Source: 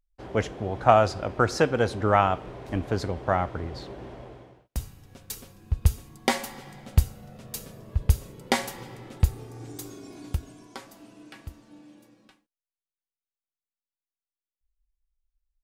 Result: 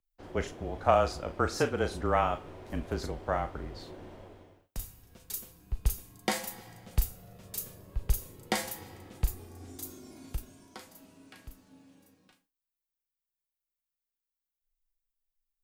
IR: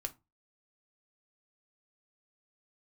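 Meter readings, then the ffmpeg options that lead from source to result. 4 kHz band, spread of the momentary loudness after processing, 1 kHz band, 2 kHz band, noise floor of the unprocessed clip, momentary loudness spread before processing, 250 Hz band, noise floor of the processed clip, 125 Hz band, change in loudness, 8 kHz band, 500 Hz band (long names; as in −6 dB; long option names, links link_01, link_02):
−5.0 dB, 21 LU, −6.5 dB, −6.5 dB, below −85 dBFS, 22 LU, −6.5 dB, below −85 dBFS, −9.5 dB, −6.5 dB, −2.0 dB, −6.0 dB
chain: -filter_complex "[0:a]afreqshift=-28,asplit=2[link_01][link_02];[link_02]aemphasis=mode=production:type=riaa[link_03];[1:a]atrim=start_sample=2205,adelay=36[link_04];[link_03][link_04]afir=irnorm=-1:irlink=0,volume=-9dB[link_05];[link_01][link_05]amix=inputs=2:normalize=0,volume=-6.5dB"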